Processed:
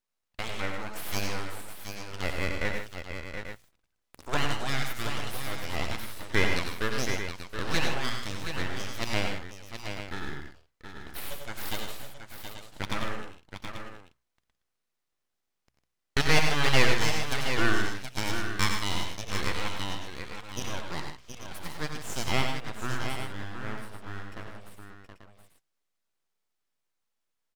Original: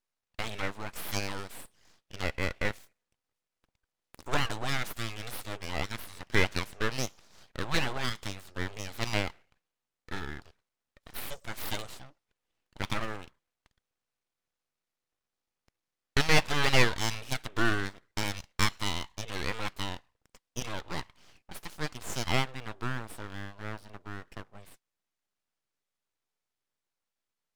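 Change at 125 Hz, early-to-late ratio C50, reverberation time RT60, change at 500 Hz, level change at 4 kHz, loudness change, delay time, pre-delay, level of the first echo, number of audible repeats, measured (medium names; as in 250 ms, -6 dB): +1.5 dB, no reverb, no reverb, +2.0 dB, +2.0 dB, +1.5 dB, 61 ms, no reverb, -17.5 dB, 5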